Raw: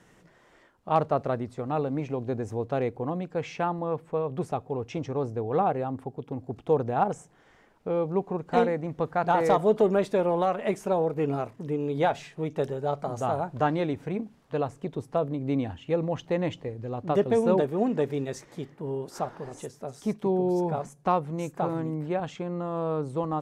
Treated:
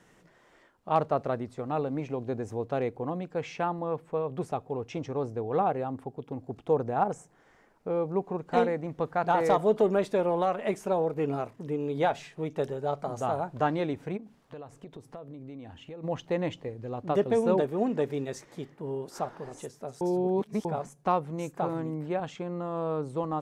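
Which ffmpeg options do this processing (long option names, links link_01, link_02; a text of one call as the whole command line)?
ffmpeg -i in.wav -filter_complex "[0:a]asettb=1/sr,asplit=3[link_01][link_02][link_03];[link_01]atrim=end=6.684[link_04];[link_02]atrim=start=6.68:end=8.25,asetpts=PTS-STARTPTS,afade=type=in:duration=0.004:curve=qsin,afade=type=out:start_time=1.566:duration=0.004:curve=qsin,equalizer=frequency=3200:width_type=o:width=0.77:gain=-5[link_05];[link_03]atrim=start=8.246[link_06];[link_04][link_05]acrossfade=duration=0.004:curve1=hsin:curve2=qsin[link_07];[link_07][link_06]acrossfade=duration=0.004:curve1=qsin:curve2=hsin,asplit=3[link_08][link_09][link_10];[link_08]afade=type=out:start_time=14.16:duration=0.02[link_11];[link_09]acompressor=threshold=-38dB:ratio=6:attack=3.2:release=140:knee=1:detection=peak,afade=type=in:start_time=14.16:duration=0.02,afade=type=out:start_time=16.03:duration=0.02[link_12];[link_10]afade=type=in:start_time=16.03:duration=0.02[link_13];[link_11][link_12][link_13]amix=inputs=3:normalize=0,asplit=3[link_14][link_15][link_16];[link_14]atrim=end=20.012[link_17];[link_15]atrim=start=20.008:end=20.652,asetpts=PTS-STARTPTS,areverse[link_18];[link_16]atrim=start=20.648[link_19];[link_17][link_18]acrossfade=duration=0.004:curve1=hsin:curve2=hsin[link_20];[link_20][link_19]acrossfade=duration=0.004:curve1=hsin:curve2=hsin,equalizer=frequency=69:width_type=o:width=2.5:gain=-3.5,volume=-1.5dB" out.wav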